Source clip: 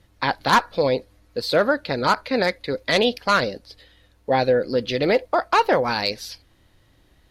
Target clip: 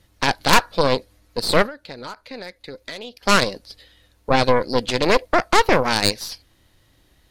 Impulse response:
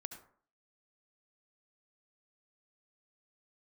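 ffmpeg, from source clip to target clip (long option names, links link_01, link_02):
-filter_complex "[0:a]highshelf=frequency=3600:gain=7,asettb=1/sr,asplit=3[link_01][link_02][link_03];[link_01]atrim=end=1.664[link_04];[link_02]atrim=start=1.66:end=3.23,asetpts=PTS-STARTPTS,afade=type=in:duration=0.004:curve=qsin,afade=type=out:start_time=1.566:duration=0.004:curve=qsin,acompressor=threshold=-33dB:ratio=5[link_05];[link_03]atrim=start=3.226[link_06];[link_04][link_05]acrossfade=duration=0.004:curve1=hsin:curve2=qsin[link_07];[link_07][link_06]acrossfade=duration=0.004:curve1=qsin:curve2=hsin,aeval=exprs='0.631*(cos(1*acos(clip(val(0)/0.631,-1,1)))-cos(1*PI/2))+0.251*(cos(4*acos(clip(val(0)/0.631,-1,1)))-cos(4*PI/2))':channel_layout=same,volume=-1dB"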